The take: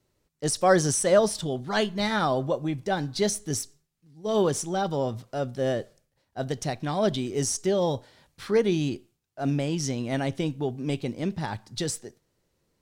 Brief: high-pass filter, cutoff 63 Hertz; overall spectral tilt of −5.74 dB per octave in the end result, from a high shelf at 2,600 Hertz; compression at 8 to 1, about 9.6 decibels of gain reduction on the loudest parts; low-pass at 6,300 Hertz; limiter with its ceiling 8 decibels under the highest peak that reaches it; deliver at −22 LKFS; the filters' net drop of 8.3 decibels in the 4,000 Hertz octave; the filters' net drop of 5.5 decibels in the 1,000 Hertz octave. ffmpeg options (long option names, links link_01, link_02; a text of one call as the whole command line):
ffmpeg -i in.wav -af "highpass=63,lowpass=6300,equalizer=frequency=1000:width_type=o:gain=-7.5,highshelf=frequency=2600:gain=-3.5,equalizer=frequency=4000:width_type=o:gain=-6.5,acompressor=threshold=-27dB:ratio=8,volume=14.5dB,alimiter=limit=-13dB:level=0:latency=1" out.wav